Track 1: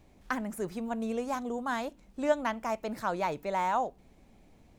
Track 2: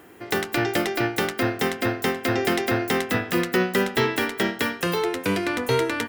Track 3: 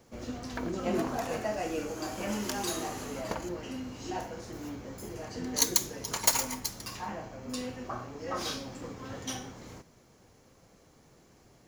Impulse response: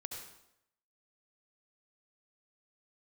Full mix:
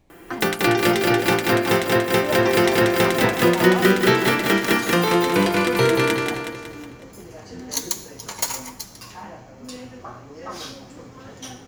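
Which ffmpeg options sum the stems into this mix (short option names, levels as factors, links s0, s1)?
-filter_complex "[0:a]volume=0.891[s0];[1:a]aecho=1:1:5.9:0.43,adelay=100,volume=1.41,asplit=2[s1][s2];[s2]volume=0.668[s3];[2:a]flanger=delay=4.4:depth=6.9:regen=69:speed=1.2:shape=triangular,adelay=2150,volume=1.41,asplit=2[s4][s5];[s5]volume=0.355[s6];[3:a]atrim=start_sample=2205[s7];[s6][s7]afir=irnorm=-1:irlink=0[s8];[s3]aecho=0:1:184|368|552|736|920|1104|1288:1|0.5|0.25|0.125|0.0625|0.0312|0.0156[s9];[s0][s1][s4][s8][s9]amix=inputs=5:normalize=0"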